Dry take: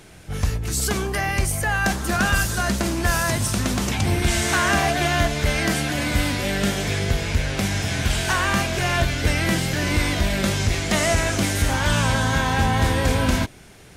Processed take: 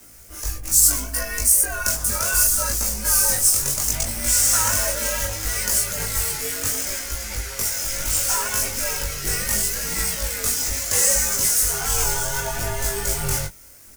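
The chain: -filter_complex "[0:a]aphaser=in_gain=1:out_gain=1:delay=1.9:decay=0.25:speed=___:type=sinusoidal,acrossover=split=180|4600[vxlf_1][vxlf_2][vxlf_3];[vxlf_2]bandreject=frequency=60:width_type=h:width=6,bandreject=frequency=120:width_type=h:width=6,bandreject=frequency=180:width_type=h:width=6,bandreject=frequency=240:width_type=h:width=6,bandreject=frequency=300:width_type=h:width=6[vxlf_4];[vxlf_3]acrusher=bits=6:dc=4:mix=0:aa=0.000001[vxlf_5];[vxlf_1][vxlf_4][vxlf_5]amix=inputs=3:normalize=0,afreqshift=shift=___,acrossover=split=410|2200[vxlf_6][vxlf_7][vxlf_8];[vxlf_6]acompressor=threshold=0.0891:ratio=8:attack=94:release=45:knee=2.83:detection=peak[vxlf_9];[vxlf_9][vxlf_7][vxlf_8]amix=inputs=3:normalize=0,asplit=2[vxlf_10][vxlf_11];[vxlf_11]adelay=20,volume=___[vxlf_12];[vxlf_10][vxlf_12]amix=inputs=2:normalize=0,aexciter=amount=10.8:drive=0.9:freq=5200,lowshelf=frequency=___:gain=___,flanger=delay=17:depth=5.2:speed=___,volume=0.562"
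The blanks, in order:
1.5, -120, 0.668, 160, -3, 0.7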